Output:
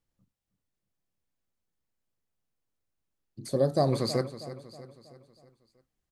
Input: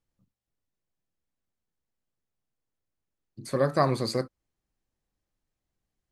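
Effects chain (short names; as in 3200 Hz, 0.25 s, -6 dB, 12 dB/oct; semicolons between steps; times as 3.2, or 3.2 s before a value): 3.48–3.93 band shelf 1600 Hz -14.5 dB; feedback echo 0.32 s, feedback 49%, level -14 dB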